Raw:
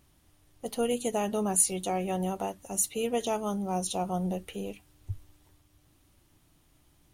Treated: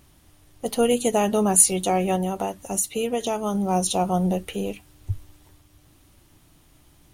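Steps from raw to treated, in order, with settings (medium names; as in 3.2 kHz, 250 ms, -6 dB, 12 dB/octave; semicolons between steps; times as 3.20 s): 2.15–3.55 s: compression 3:1, threshold -31 dBFS, peak gain reduction 7 dB; trim +8.5 dB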